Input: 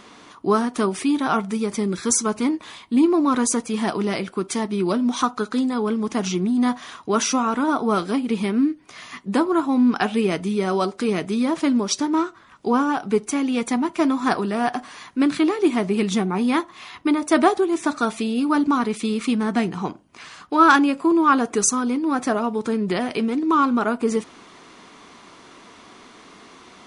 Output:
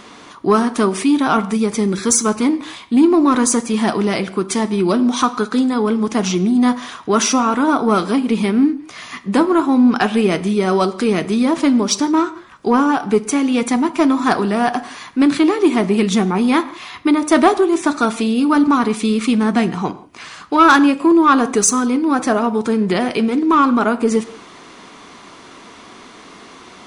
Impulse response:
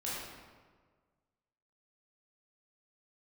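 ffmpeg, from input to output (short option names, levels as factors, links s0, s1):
-filter_complex "[0:a]acontrast=73,asplit=2[s0][s1];[1:a]atrim=start_sample=2205,afade=t=out:st=0.23:d=0.01,atrim=end_sample=10584[s2];[s1][s2]afir=irnorm=-1:irlink=0,volume=0.168[s3];[s0][s3]amix=inputs=2:normalize=0,volume=0.841"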